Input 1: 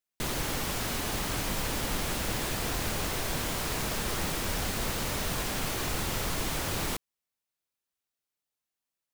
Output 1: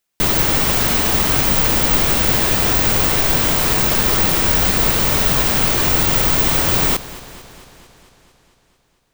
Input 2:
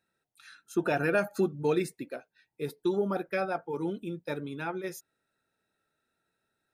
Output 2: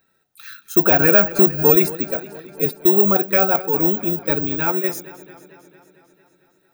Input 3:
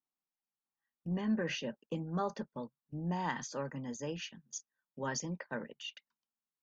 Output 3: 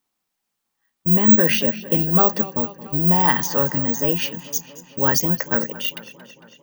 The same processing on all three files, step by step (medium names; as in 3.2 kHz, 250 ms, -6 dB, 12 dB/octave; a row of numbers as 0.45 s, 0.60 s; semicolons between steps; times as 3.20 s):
saturation -18.5 dBFS; careless resampling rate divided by 2×, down filtered, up zero stuff; modulated delay 225 ms, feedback 66%, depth 75 cents, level -17 dB; peak normalisation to -1.5 dBFS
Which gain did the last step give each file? +13.5 dB, +12.0 dB, +16.5 dB